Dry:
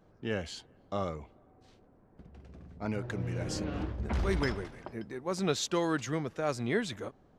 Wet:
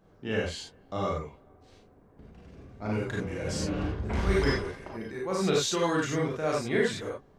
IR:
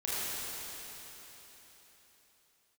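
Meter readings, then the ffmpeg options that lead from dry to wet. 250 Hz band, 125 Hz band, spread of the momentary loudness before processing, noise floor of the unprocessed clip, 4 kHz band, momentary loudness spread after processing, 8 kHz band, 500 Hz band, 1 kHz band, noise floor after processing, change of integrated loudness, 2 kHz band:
+3.5 dB, +3.0 dB, 13 LU, -63 dBFS, +4.5 dB, 12 LU, +4.5 dB, +5.0 dB, +4.0 dB, -58 dBFS, +4.0 dB, +5.0 dB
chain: -filter_complex "[1:a]atrim=start_sample=2205,atrim=end_sample=4410[s0];[0:a][s0]afir=irnorm=-1:irlink=0,volume=1.33"

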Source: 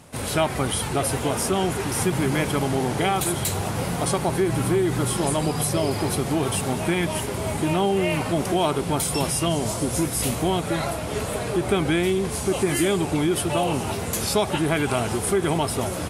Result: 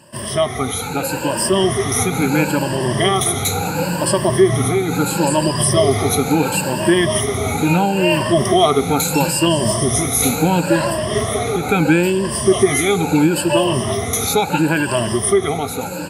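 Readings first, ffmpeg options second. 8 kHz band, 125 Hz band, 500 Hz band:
+7.0 dB, +5.5 dB, +7.0 dB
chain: -af "afftfilt=real='re*pow(10,18/40*sin(2*PI*(1.3*log(max(b,1)*sr/1024/100)/log(2)-(0.74)*(pts-256)/sr)))':imag='im*pow(10,18/40*sin(2*PI*(1.3*log(max(b,1)*sr/1024/100)/log(2)-(0.74)*(pts-256)/sr)))':win_size=1024:overlap=0.75,highpass=88,dynaudnorm=f=150:g=13:m=4.22,volume=0.891"

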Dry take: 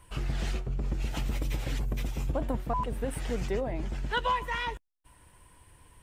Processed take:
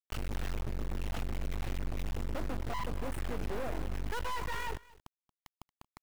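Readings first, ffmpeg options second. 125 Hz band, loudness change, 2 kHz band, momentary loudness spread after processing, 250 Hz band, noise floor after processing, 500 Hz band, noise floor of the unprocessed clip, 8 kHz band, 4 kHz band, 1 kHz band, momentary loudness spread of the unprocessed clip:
-5.5 dB, -6.0 dB, -6.0 dB, 2 LU, -5.5 dB, under -85 dBFS, -6.5 dB, -61 dBFS, -4.5 dB, -6.5 dB, -7.5 dB, 5 LU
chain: -af "highshelf=f=3900:g=-6.5,afftfilt=real='re*gte(hypot(re,im),0.00282)':imag='im*gte(hypot(re,im),0.00282)':win_size=1024:overlap=0.75,acontrast=69,asoftclip=type=tanh:threshold=0.0398,acrusher=bits=4:dc=4:mix=0:aa=0.000001,aecho=1:1:229:0.0794,adynamicequalizer=threshold=0.00251:dfrequency=2700:dqfactor=0.7:tfrequency=2700:tqfactor=0.7:attack=5:release=100:ratio=0.375:range=3:mode=cutabove:tftype=highshelf"

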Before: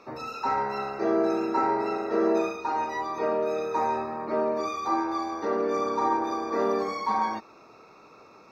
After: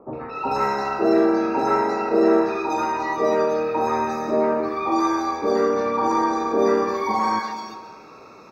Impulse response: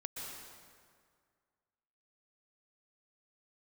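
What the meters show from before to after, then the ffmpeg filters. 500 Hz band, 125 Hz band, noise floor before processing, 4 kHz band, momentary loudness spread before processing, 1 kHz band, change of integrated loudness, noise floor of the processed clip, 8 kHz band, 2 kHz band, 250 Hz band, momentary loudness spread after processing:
+6.5 dB, +7.5 dB, -53 dBFS, +6.0 dB, 5 LU, +5.0 dB, +6.0 dB, -44 dBFS, no reading, +6.5 dB, +7.5 dB, 6 LU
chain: -filter_complex "[0:a]acrossover=split=910|3200[s0][s1][s2];[s1]adelay=130[s3];[s2]adelay=350[s4];[s0][s3][s4]amix=inputs=3:normalize=0,asplit=2[s5][s6];[1:a]atrim=start_sample=2205[s7];[s6][s7]afir=irnorm=-1:irlink=0,volume=0.422[s8];[s5][s8]amix=inputs=2:normalize=0,acontrast=51"

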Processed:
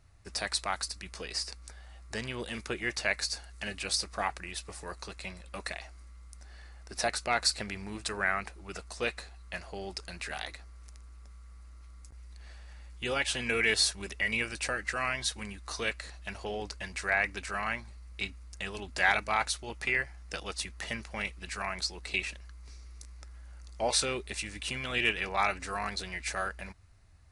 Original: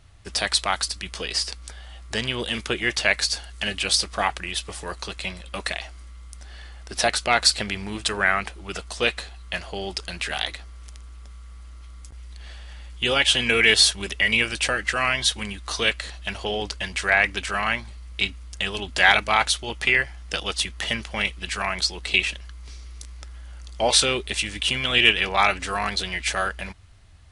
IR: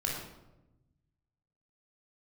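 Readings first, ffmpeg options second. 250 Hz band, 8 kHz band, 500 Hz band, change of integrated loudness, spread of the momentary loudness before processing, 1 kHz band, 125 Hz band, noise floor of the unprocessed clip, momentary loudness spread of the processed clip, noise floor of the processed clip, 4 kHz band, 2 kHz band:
-8.5 dB, -8.5 dB, -8.5 dB, -10.0 dB, 21 LU, -8.5 dB, -8.5 dB, -42 dBFS, 22 LU, -50 dBFS, -12.5 dB, -9.5 dB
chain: -af "equalizer=f=3200:t=o:w=0.36:g=-10.5,volume=0.376"

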